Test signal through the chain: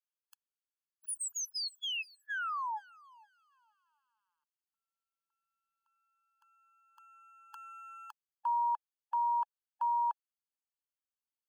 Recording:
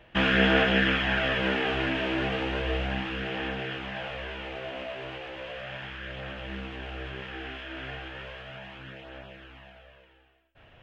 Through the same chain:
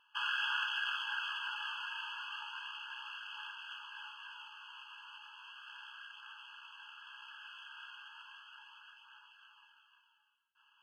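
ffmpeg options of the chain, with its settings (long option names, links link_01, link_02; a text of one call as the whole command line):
ffmpeg -i in.wav -af "aeval=exprs='if(lt(val(0),0),0.708*val(0),val(0))':channel_layout=same,afftfilt=real='re*eq(mod(floor(b*sr/1024/850),2),1)':imag='im*eq(mod(floor(b*sr/1024/850),2),1)':win_size=1024:overlap=0.75,volume=-6.5dB" out.wav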